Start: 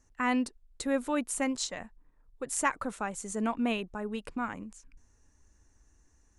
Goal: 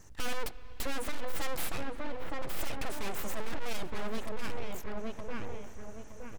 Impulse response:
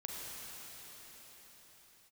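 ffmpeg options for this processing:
-filter_complex "[0:a]acontrast=32,aeval=exprs='abs(val(0))':channel_layout=same,asplit=2[link_01][link_02];[link_02]adelay=917,lowpass=frequency=1800:poles=1,volume=-7.5dB,asplit=2[link_03][link_04];[link_04]adelay=917,lowpass=frequency=1800:poles=1,volume=0.25,asplit=2[link_05][link_06];[link_06]adelay=917,lowpass=frequency=1800:poles=1,volume=0.25[link_07];[link_03][link_05][link_07]amix=inputs=3:normalize=0[link_08];[link_01][link_08]amix=inputs=2:normalize=0,aeval=exprs='(tanh(28.2*val(0)+0.7)-tanh(0.7))/28.2':channel_layout=same,asplit=2[link_09][link_10];[1:a]atrim=start_sample=2205,asetrate=28665,aresample=44100,lowpass=3800[link_11];[link_10][link_11]afir=irnorm=-1:irlink=0,volume=-16dB[link_12];[link_09][link_12]amix=inputs=2:normalize=0,volume=11.5dB"

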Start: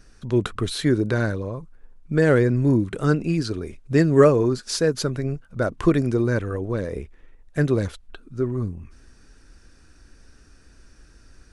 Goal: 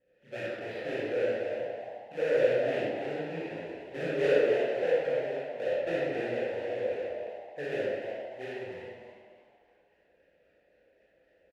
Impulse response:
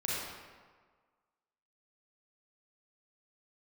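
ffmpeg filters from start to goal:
-filter_complex "[0:a]asettb=1/sr,asplit=3[link_01][link_02][link_03];[link_01]atrim=end=2.764[link_04];[link_02]atrim=start=2.76:end=4.01,asetpts=PTS-STARTPTS,afade=type=in:duration=0.004:curve=qsin,afade=type=out:start_time=1.246:duration=0.004:curve=qsin,acrossover=split=290|3000[link_05][link_06][link_07];[link_06]acompressor=threshold=-25dB:ratio=6[link_08];[link_05][link_08][link_07]amix=inputs=3:normalize=0[link_09];[link_03]atrim=start=4.006[link_10];[link_04][link_09]acrossfade=duration=0.004:curve1=hsin:curve2=qsin[link_11];[link_11][link_10]acrossfade=duration=0.004:curve1=qsin:curve2=hsin,acrusher=samples=26:mix=1:aa=0.000001:lfo=1:lforange=41.6:lforate=3.8,asoftclip=type=hard:threshold=-9.5dB,asplit=3[link_12][link_13][link_14];[link_12]bandpass=frequency=530:width_type=q:width=8,volume=0dB[link_15];[link_13]bandpass=frequency=1840:width_type=q:width=8,volume=-6dB[link_16];[link_14]bandpass=frequency=2480:width_type=q:width=8,volume=-9dB[link_17];[link_15][link_16][link_17]amix=inputs=3:normalize=0,asoftclip=type=tanh:threshold=-19.5dB,flanger=delay=17.5:depth=7.4:speed=2.8,asplit=5[link_18][link_19][link_20][link_21][link_22];[link_19]adelay=299,afreqshift=110,volume=-9dB[link_23];[link_20]adelay=598,afreqshift=220,volume=-19.2dB[link_24];[link_21]adelay=897,afreqshift=330,volume=-29.3dB[link_25];[link_22]adelay=1196,afreqshift=440,volume=-39.5dB[link_26];[link_18][link_23][link_24][link_25][link_26]amix=inputs=5:normalize=0[link_27];[1:a]atrim=start_sample=2205[link_28];[link_27][link_28]afir=irnorm=-1:irlink=0,adynamicequalizer=threshold=0.002:dfrequency=5800:dqfactor=0.7:tfrequency=5800:tqfactor=0.7:attack=5:release=100:ratio=0.375:range=2:mode=cutabove:tftype=highshelf"

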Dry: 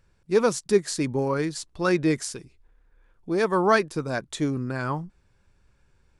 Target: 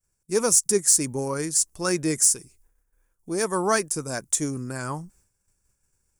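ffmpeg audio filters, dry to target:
ffmpeg -i in.wav -af "aexciter=amount=5.3:drive=9.9:freq=5800,agate=range=-33dB:threshold=-51dB:ratio=3:detection=peak,volume=-3dB" out.wav

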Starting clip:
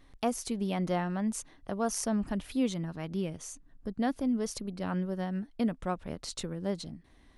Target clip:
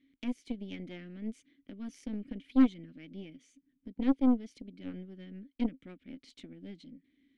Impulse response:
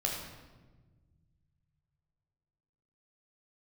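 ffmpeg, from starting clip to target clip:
-filter_complex "[0:a]asplit=3[link_01][link_02][link_03];[link_01]bandpass=frequency=270:width_type=q:width=8,volume=0dB[link_04];[link_02]bandpass=frequency=2290:width_type=q:width=8,volume=-6dB[link_05];[link_03]bandpass=frequency=3010:width_type=q:width=8,volume=-9dB[link_06];[link_04][link_05][link_06]amix=inputs=3:normalize=0,aeval=exprs='0.0794*(cos(1*acos(clip(val(0)/0.0794,-1,1)))-cos(1*PI/2))+0.00708*(cos(4*acos(clip(val(0)/0.0794,-1,1)))-cos(4*PI/2))+0.00501*(cos(7*acos(clip(val(0)/0.0794,-1,1)))-cos(7*PI/2))+0.00251*(cos(8*acos(clip(val(0)/0.0794,-1,1)))-cos(8*PI/2))':channel_layout=same,volume=7.5dB" -ar 32000 -c:a libvorbis -b:a 128k

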